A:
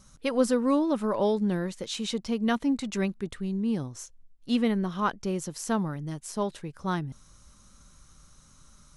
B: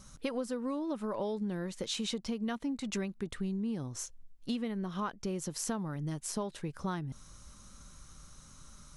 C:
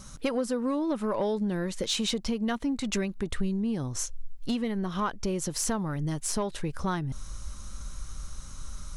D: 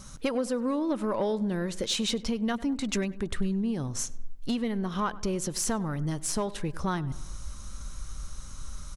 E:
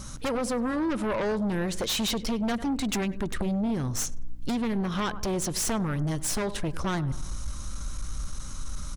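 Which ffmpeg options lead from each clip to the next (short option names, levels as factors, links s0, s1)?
-af "acompressor=threshold=0.02:ratio=10,volume=1.26"
-af "aeval=exprs='0.106*sin(PI/2*1.58*val(0)/0.106)':c=same,asubboost=boost=3:cutoff=84"
-filter_complex "[0:a]asplit=2[s0][s1];[s1]adelay=99,lowpass=f=2200:p=1,volume=0.126,asplit=2[s2][s3];[s3]adelay=99,lowpass=f=2200:p=1,volume=0.55,asplit=2[s4][s5];[s5]adelay=99,lowpass=f=2200:p=1,volume=0.55,asplit=2[s6][s7];[s7]adelay=99,lowpass=f=2200:p=1,volume=0.55,asplit=2[s8][s9];[s9]adelay=99,lowpass=f=2200:p=1,volume=0.55[s10];[s0][s2][s4][s6][s8][s10]amix=inputs=6:normalize=0"
-af "aeval=exprs='0.133*(cos(1*acos(clip(val(0)/0.133,-1,1)))-cos(1*PI/2))+0.0473*(cos(3*acos(clip(val(0)/0.133,-1,1)))-cos(3*PI/2))+0.0596*(cos(5*acos(clip(val(0)/0.133,-1,1)))-cos(5*PI/2))+0.00531*(cos(7*acos(clip(val(0)/0.133,-1,1)))-cos(7*PI/2))':c=same,aeval=exprs='val(0)+0.00447*(sin(2*PI*60*n/s)+sin(2*PI*2*60*n/s)/2+sin(2*PI*3*60*n/s)/3+sin(2*PI*4*60*n/s)/4+sin(2*PI*5*60*n/s)/5)':c=same"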